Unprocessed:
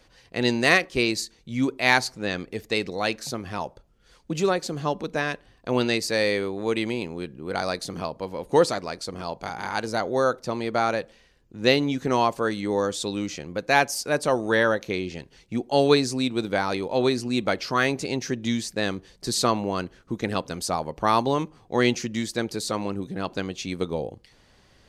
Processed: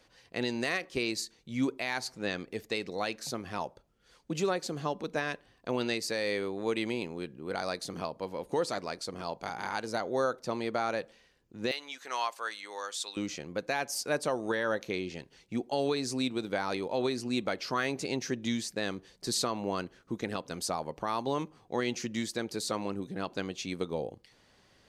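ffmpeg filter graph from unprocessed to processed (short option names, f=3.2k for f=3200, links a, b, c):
-filter_complex "[0:a]asettb=1/sr,asplit=3[a][b][c];[a]atrim=end=11.714[d];[b]atrim=start=11.71:end=13.17,asetpts=PTS-STARTPTS,afade=t=in:d=0.004:c=qsin,afade=t=out:st=1.456:d=0.004:c=qsin,highpass=1.1k,asoftclip=type=hard:threshold=-11.5dB[e];[c]atrim=start=13.166[f];[d][e]acrossfade=d=0.004:c1=hsin:c2=qsin[g];[g][f]acrossfade=d=0.004:c1=qsin:c2=hsin,lowshelf=f=81:g=-11,alimiter=limit=-15dB:level=0:latency=1:release=185,volume=-4.5dB"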